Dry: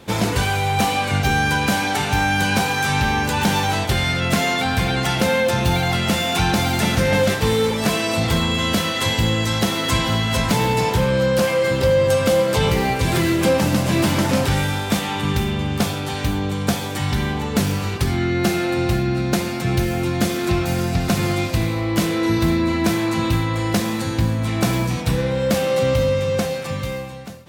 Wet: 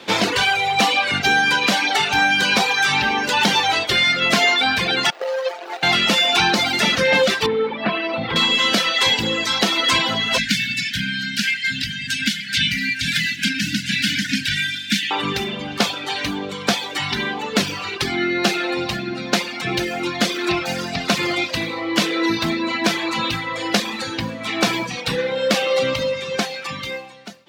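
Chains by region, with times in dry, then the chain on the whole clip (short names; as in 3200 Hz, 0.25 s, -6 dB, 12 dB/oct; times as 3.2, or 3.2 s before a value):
5.1–5.83 median filter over 41 samples + HPF 480 Hz 24 dB/oct
7.46–8.36 HPF 43 Hz + air absorption 430 m
10.38–15.11 brick-wall FIR band-stop 290–1400 Hz + echo 0.549 s -22 dB
whole clip: high shelf 2000 Hz +11.5 dB; reverb removal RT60 1.8 s; three-band isolator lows -20 dB, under 190 Hz, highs -20 dB, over 5100 Hz; gain +2.5 dB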